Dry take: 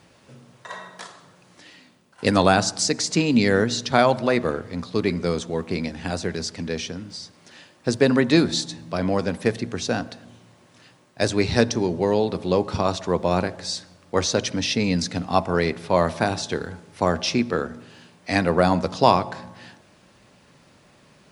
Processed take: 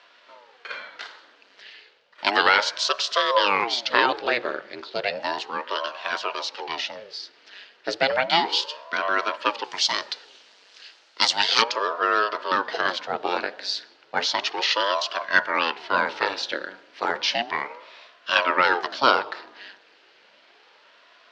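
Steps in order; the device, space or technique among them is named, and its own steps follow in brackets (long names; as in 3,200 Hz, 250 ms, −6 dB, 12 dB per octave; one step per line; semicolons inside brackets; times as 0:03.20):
0:09.64–0:11.62: bass and treble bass −9 dB, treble +15 dB
voice changer toy (ring modulator whose carrier an LFO sweeps 480 Hz, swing 80%, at 0.33 Hz; loudspeaker in its box 600–4,700 Hz, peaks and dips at 750 Hz −6 dB, 1,100 Hz −5 dB, 1,600 Hz +3 dB, 2,900 Hz +4 dB, 4,400 Hz +3 dB)
level +5 dB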